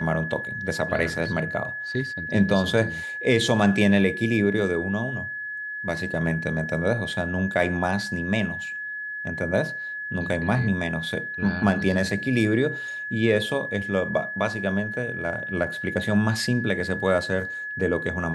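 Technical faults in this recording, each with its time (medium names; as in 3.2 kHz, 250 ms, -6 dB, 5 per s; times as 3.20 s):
whine 1.7 kHz -30 dBFS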